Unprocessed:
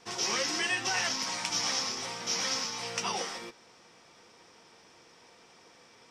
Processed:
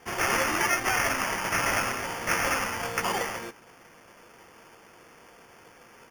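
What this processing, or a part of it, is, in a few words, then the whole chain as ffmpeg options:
crushed at another speed: -af "asetrate=35280,aresample=44100,acrusher=samples=14:mix=1:aa=0.000001,asetrate=55125,aresample=44100,volume=5dB"

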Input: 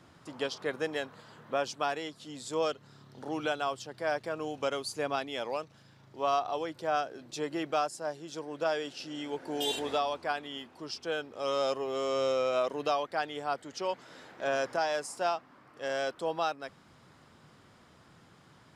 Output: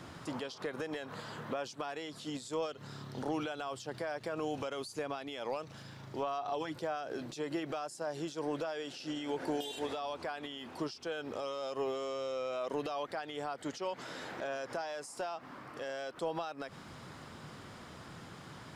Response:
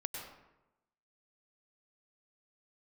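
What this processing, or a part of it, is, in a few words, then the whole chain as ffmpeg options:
de-esser from a sidechain: -filter_complex "[0:a]asettb=1/sr,asplit=3[link_01][link_02][link_03];[link_01]atrim=end=6.224[link_04];[link_02]atrim=start=6.22:end=6.75,asetpts=PTS-STARTPTS,afade=type=in:duration=0.004:curve=qsin,afade=type=out:start_time=0.526:duration=0.004:curve=qsin,aecho=1:1:7.1:0.65,atrim=end_sample=23373[link_05];[link_03]atrim=start=6.746[link_06];[link_04][link_05]acrossfade=duration=0.004:curve1=hsin:curve2=qsin[link_07];[link_07][link_06]acrossfade=duration=0.004:curve1=qsin:curve2=hsin,asplit=2[link_08][link_09];[link_09]highpass=frequency=4300:poles=1,apad=whole_len=827176[link_10];[link_08][link_10]sidechaincompress=threshold=-55dB:ratio=5:attack=0.58:release=78,volume=9dB"

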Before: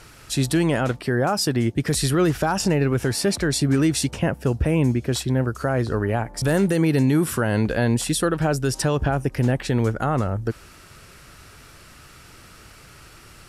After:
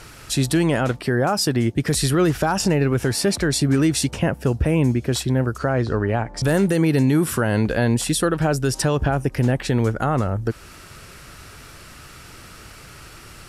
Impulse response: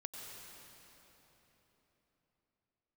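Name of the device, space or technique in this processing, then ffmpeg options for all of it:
parallel compression: -filter_complex "[0:a]asplit=2[link_01][link_02];[link_02]acompressor=threshold=-30dB:ratio=6,volume=-3.5dB[link_03];[link_01][link_03]amix=inputs=2:normalize=0,asettb=1/sr,asplit=3[link_04][link_05][link_06];[link_04]atrim=end=5.584[link_07];[link_05]atrim=start=5.58:end=6.43,asetpts=PTS-STARTPTS,afade=type=in:duration=0.004:curve=qsin,afade=type=out:start_time=0.846:duration=0.004:curve=qsin,lowpass=6200[link_08];[link_06]atrim=start=6.426[link_09];[link_07][link_08]acrossfade=duration=0.004:curve1=hsin:curve2=qsin[link_10];[link_10][link_09]acrossfade=duration=0.004:curve1=qsin:curve2=hsin"

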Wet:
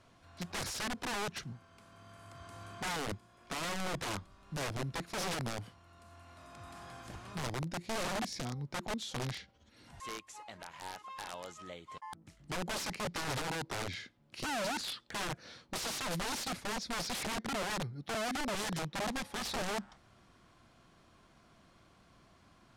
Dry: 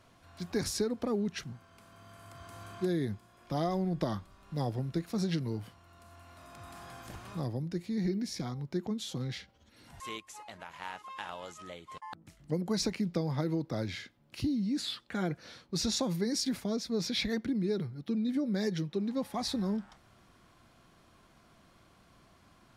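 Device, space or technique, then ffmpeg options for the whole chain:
overflowing digital effects unit: -af "aeval=exprs='(mod(31.6*val(0)+1,2)-1)/31.6':channel_layout=same,lowpass=9900,volume=-1.5dB"

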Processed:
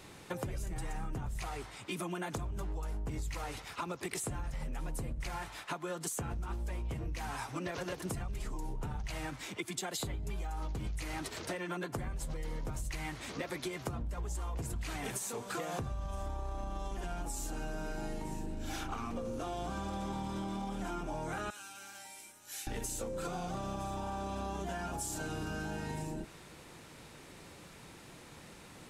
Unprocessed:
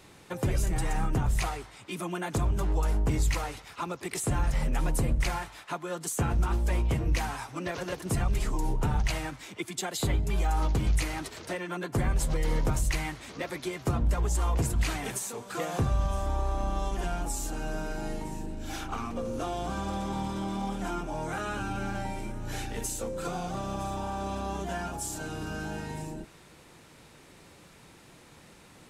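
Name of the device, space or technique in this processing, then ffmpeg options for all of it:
serial compression, leveller first: -filter_complex "[0:a]asettb=1/sr,asplit=3[link_01][link_02][link_03];[link_01]atrim=end=21.504[link_04];[link_02]atrim=start=21.5:end=22.67,asetpts=PTS-STARTPTS,afade=type=in:duration=0.004:curve=qsin,afade=type=out:start_time=1.166:duration=0.004:curve=qsin,aderivative[link_05];[link_03]atrim=start=22.666[link_06];[link_04][link_05]acrossfade=duration=0.004:curve1=hsin:curve2=qsin[link_07];[link_07][link_06]acrossfade=duration=0.004:curve1=qsin:curve2=hsin,acompressor=threshold=-29dB:ratio=6,acompressor=threshold=-36dB:ratio=6,volume=1dB"

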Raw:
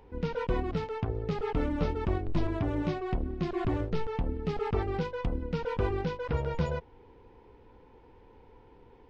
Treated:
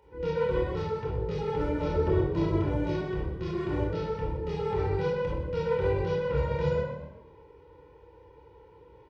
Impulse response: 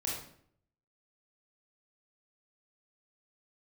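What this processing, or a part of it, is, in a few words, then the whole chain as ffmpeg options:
microphone above a desk: -filter_complex "[0:a]aecho=1:1:2.1:0.77[link_01];[1:a]atrim=start_sample=2205[link_02];[link_01][link_02]afir=irnorm=-1:irlink=0,highpass=78,bandreject=frequency=50:width_type=h:width=6,bandreject=frequency=100:width_type=h:width=6,asettb=1/sr,asplit=3[link_03][link_04][link_05];[link_03]atrim=end=1.944[link_06];[link_04]atrim=start=1.94:end=2.63,asetpts=PTS-STARTPTS,afade=type=in:duration=0.004:curve=qsin,afade=type=out:start_time=0.686:duration=0.004:curve=qsin,equalizer=frequency=320:width=0.43:gain=5.5[link_07];[link_05]atrim=start=2.626[link_08];[link_06][link_07]acrossfade=duration=0.004:curve1=hsin:curve2=qsin[link_09];[link_09][link_08]acrossfade=duration=0.004:curve1=qsin:curve2=hsin,asplit=4[link_10][link_11][link_12][link_13];[link_11]adelay=123,afreqshift=41,volume=-12.5dB[link_14];[link_12]adelay=246,afreqshift=82,volume=-21.9dB[link_15];[link_13]adelay=369,afreqshift=123,volume=-31.2dB[link_16];[link_10][link_14][link_15][link_16]amix=inputs=4:normalize=0,volume=-4.5dB"

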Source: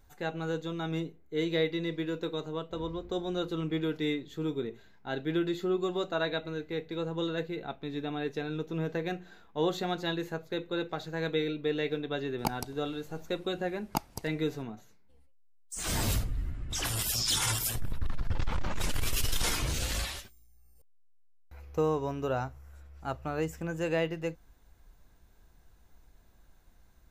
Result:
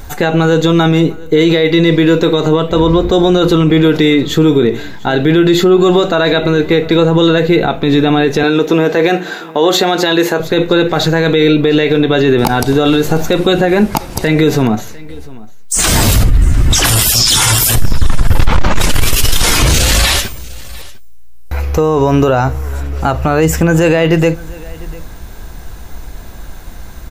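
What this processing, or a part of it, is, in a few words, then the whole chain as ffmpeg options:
loud club master: -filter_complex "[0:a]asettb=1/sr,asplit=3[link_01][link_02][link_03];[link_01]atrim=end=8.434[link_04];[link_02]atrim=start=8.43:end=10.4,asetpts=PTS-STARTPTS,afade=type=in:duration=0.004:curve=qsin,afade=type=out:start_time=1.966:duration=0.004:curve=qsin,highpass=290[link_05];[link_03]atrim=start=10.396[link_06];[link_04][link_05]acrossfade=duration=0.004:curve1=hsin:curve2=qsin[link_07];[link_07][link_06]acrossfade=duration=0.004:curve1=qsin:curve2=hsin,acompressor=threshold=-31dB:ratio=2.5,asoftclip=type=hard:threshold=-22dB,alimiter=level_in=32.5dB:limit=-1dB:release=50:level=0:latency=1,aecho=1:1:700:0.0794,volume=-1dB"

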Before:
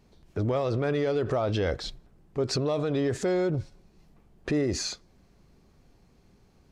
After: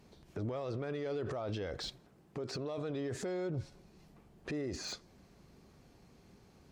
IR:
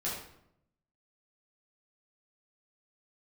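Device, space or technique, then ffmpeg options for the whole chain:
podcast mastering chain: -filter_complex "[0:a]asettb=1/sr,asplit=3[link_01][link_02][link_03];[link_01]atrim=end=1.884[link_04];[link_02]atrim=start=1.88:end=2.78,asetpts=PTS-STARTPTS,afade=type=in:duration=0.004:curve=qsin,afade=type=out:start_time=0.896:duration=0.004:curve=qsin,highpass=frequency=150:poles=1[link_05];[link_03]atrim=start=2.776[link_06];[link_04][link_05]acrossfade=duration=0.004:curve1=hsin:curve2=qsin[link_07];[link_07][link_06]acrossfade=duration=0.004:curve1=qsin:curve2=hsin,highpass=frequency=92:poles=1,deesser=1,acompressor=threshold=-33dB:ratio=3,alimiter=level_in=8.5dB:limit=-24dB:level=0:latency=1:release=40,volume=-8.5dB,volume=2dB" -ar 44100 -c:a libmp3lame -b:a 96k

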